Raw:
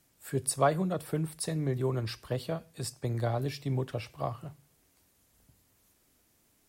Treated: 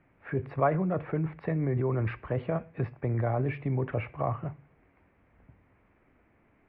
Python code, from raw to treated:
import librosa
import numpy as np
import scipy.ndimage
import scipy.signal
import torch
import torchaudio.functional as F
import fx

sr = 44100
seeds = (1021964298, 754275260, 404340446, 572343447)

p1 = scipy.signal.sosfilt(scipy.signal.ellip(4, 1.0, 70, 2300.0, 'lowpass', fs=sr, output='sos'), x)
p2 = fx.over_compress(p1, sr, threshold_db=-35.0, ratio=-0.5)
y = p1 + F.gain(torch.from_numpy(p2), -0.5).numpy()